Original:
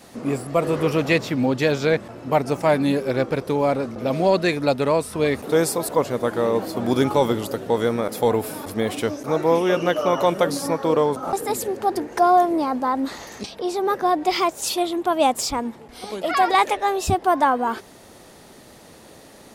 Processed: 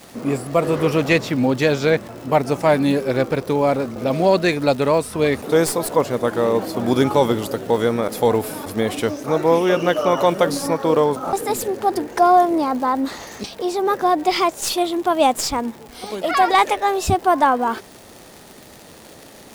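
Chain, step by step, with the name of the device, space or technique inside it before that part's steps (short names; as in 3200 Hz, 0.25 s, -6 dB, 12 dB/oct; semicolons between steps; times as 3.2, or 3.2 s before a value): record under a worn stylus (tracing distortion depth 0.022 ms; crackle 140/s -32 dBFS; white noise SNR 39 dB); gain +2.5 dB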